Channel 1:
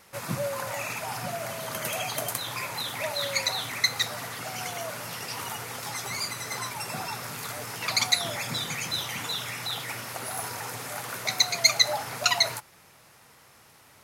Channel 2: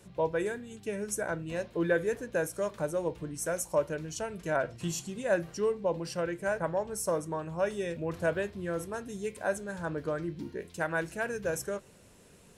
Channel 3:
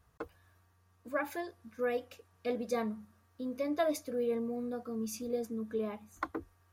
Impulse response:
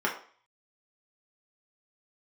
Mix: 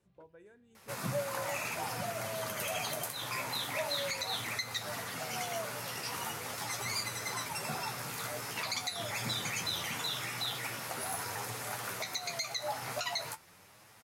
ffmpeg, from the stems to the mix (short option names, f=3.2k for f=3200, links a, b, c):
-filter_complex "[0:a]adelay=750,volume=0.5dB[a];[1:a]highshelf=f=5.6k:g=-7,acompressor=threshold=-37dB:ratio=3,volume=-18.5dB[b];[2:a]volume=-17.5dB[c];[a][c]amix=inputs=2:normalize=0,flanger=delay=9.2:depth=6.2:regen=42:speed=0.43:shape=sinusoidal,alimiter=limit=-17dB:level=0:latency=1:release=343,volume=0dB[d];[b][d]amix=inputs=2:normalize=0,alimiter=limit=-24dB:level=0:latency=1:release=109"